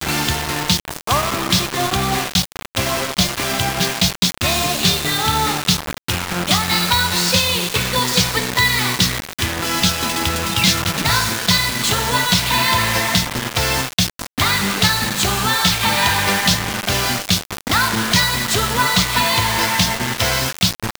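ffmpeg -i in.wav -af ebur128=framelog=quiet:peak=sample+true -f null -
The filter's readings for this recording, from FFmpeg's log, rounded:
Integrated loudness:
  I:         -16.7 LUFS
  Threshold: -26.7 LUFS
Loudness range:
  LRA:         2.1 LU
  Threshold: -36.6 LUFS
  LRA low:   -18.0 LUFS
  LRA high:  -15.8 LUFS
Sample peak:
  Peak:       -2.4 dBFS
True peak:
  Peak:       -1.7 dBFS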